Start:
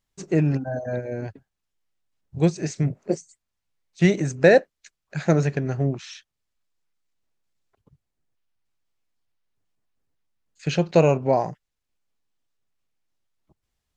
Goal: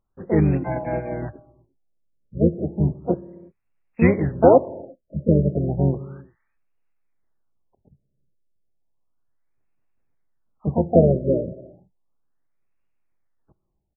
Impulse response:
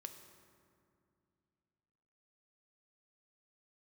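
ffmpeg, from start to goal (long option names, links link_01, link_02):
-filter_complex "[0:a]asplit=3[link_01][link_02][link_03];[link_02]asetrate=22050,aresample=44100,atempo=2,volume=-8dB[link_04];[link_03]asetrate=58866,aresample=44100,atempo=0.749154,volume=-5dB[link_05];[link_01][link_04][link_05]amix=inputs=3:normalize=0,asplit=2[link_06][link_07];[1:a]atrim=start_sample=2205,afade=type=out:start_time=0.42:duration=0.01,atrim=end_sample=18963[link_08];[link_07][link_08]afir=irnorm=-1:irlink=0,volume=-3dB[link_09];[link_06][link_09]amix=inputs=2:normalize=0,afftfilt=real='re*lt(b*sr/1024,630*pow(2900/630,0.5+0.5*sin(2*PI*0.33*pts/sr)))':imag='im*lt(b*sr/1024,630*pow(2900/630,0.5+0.5*sin(2*PI*0.33*pts/sr)))':win_size=1024:overlap=0.75,volume=-2dB"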